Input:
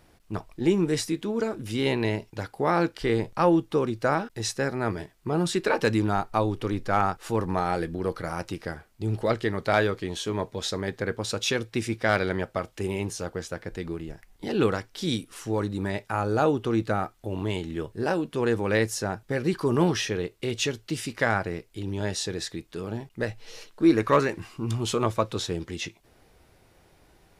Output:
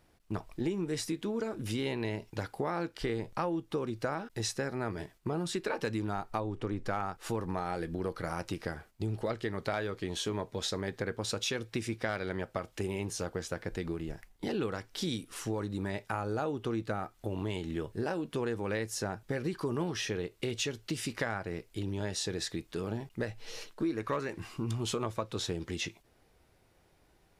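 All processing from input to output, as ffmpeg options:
-filter_complex "[0:a]asettb=1/sr,asplit=3[a][b][c];[a]atrim=end=6.404[d];[b]atrim=start=6.4:end=6.86,asetpts=PTS-STARTPTS,afade=t=in:d=0.004:c=qsin,afade=t=out:st=0.456:d=0.004:c=qsin,lowpass=f=8.7k:w=0.5412,lowpass=f=8.7k:w=1.3066,equalizer=f=4.6k:w=0.67:g=-7.5[e];[c]atrim=start=6.856[f];[d][e]acrossfade=d=0.004:c1=hsin:c2=qsin[g];[g][f]acrossfade=d=0.004:c1=qsin:c2=hsin,agate=range=-8dB:threshold=-51dB:ratio=16:detection=peak,acompressor=threshold=-31dB:ratio=5"

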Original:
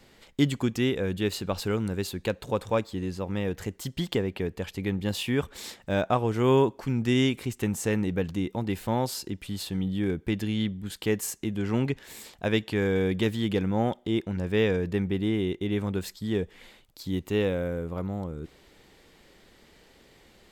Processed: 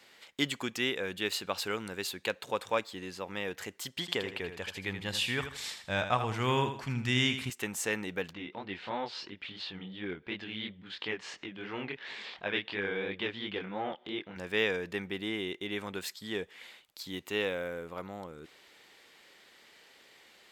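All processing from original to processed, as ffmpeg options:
-filter_complex "[0:a]asettb=1/sr,asplit=3[a][b][c];[a]atrim=end=4.004[d];[b]atrim=start=4:end=7.5,asetpts=PTS-STARTPTS,afade=t=in:d=0.004:c=qsin,afade=t=out:st=3.496:d=0.004:c=qsin,lowpass=11k,aecho=1:1:80|160|240|320:0.355|0.11|0.0341|0.0106,atrim=end_sample=154350,asubboost=boost=10.5:cutoff=130[e];[c]atrim=start=7.496[f];[d][e]acrossfade=d=0.004:c1=hsin:c2=qsin[g];[g][f]acrossfade=d=0.004:c1=qsin:c2=hsin,asettb=1/sr,asplit=3[h][i][j];[h]atrim=end=8.334[k];[i]atrim=start=8.33:end=14.36,asetpts=PTS-STARTPTS,afade=t=in:d=0.004:c=qsin,afade=t=out:st=6.026:d=0.004:c=qsin,lowpass=f=4k:w=0.5412,lowpass=f=4k:w=1.3066,acompressor=mode=upward:threshold=-30dB:ratio=2.5:attack=3.2:release=140:knee=2.83:detection=peak,flanger=delay=19.5:depth=7.7:speed=2.9[l];[j]atrim=start=14.356[m];[k][l]acrossfade=d=0.004:c1=hsin:c2=qsin[n];[n][m]acrossfade=d=0.004:c1=qsin:c2=hsin,highpass=f=750:p=1,equalizer=f=2.3k:w=0.56:g=4.5,volume=-1.5dB"

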